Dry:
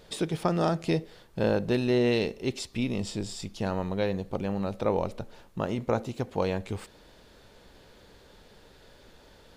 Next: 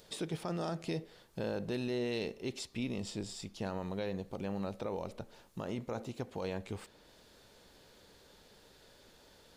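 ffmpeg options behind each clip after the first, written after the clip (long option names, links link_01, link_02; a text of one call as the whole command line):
ffmpeg -i in.wav -filter_complex "[0:a]lowshelf=frequency=76:gain=-7,acrossover=split=4100[link_01][link_02];[link_01]alimiter=limit=-22dB:level=0:latency=1:release=42[link_03];[link_02]acompressor=mode=upward:threshold=-54dB:ratio=2.5[link_04];[link_03][link_04]amix=inputs=2:normalize=0,volume=-6dB" out.wav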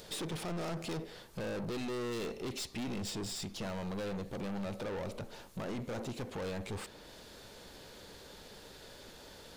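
ffmpeg -i in.wav -af "aeval=exprs='(tanh(178*val(0)+0.25)-tanh(0.25))/178':channel_layout=same,volume=9dB" out.wav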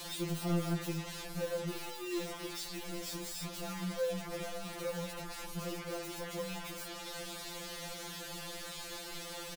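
ffmpeg -i in.wav -filter_complex "[0:a]asplit=2[link_01][link_02];[link_02]aeval=exprs='0.02*sin(PI/2*8.91*val(0)/0.02)':channel_layout=same,volume=-3.5dB[link_03];[link_01][link_03]amix=inputs=2:normalize=0,aecho=1:1:835:0.0944,afftfilt=real='re*2.83*eq(mod(b,8),0)':imag='im*2.83*eq(mod(b,8),0)':win_size=2048:overlap=0.75,volume=-2.5dB" out.wav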